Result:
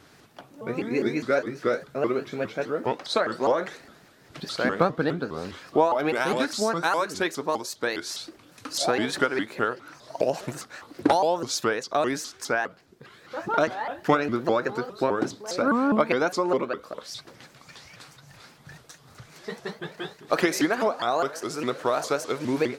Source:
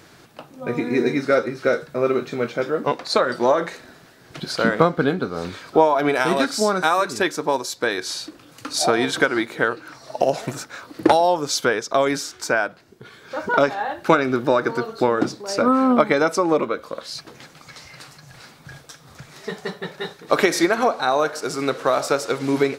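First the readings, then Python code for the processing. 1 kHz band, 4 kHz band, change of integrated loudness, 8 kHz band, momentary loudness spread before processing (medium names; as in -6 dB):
-5.5 dB, -5.5 dB, -5.5 dB, -5.5 dB, 14 LU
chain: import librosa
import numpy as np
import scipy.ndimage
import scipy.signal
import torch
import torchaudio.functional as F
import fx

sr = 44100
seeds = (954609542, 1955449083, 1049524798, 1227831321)

y = fx.vibrato_shape(x, sr, shape='saw_up', rate_hz=4.9, depth_cents=250.0)
y = y * 10.0 ** (-5.5 / 20.0)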